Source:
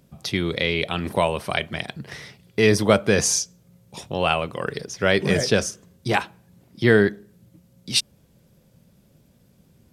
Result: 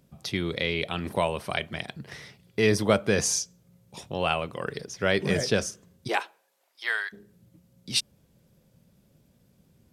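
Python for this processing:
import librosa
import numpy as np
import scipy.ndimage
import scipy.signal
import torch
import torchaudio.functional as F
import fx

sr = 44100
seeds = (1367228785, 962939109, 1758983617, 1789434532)

y = fx.highpass(x, sr, hz=fx.line((6.07, 310.0), (7.12, 1100.0)), slope=24, at=(6.07, 7.12), fade=0.02)
y = F.gain(torch.from_numpy(y), -5.0).numpy()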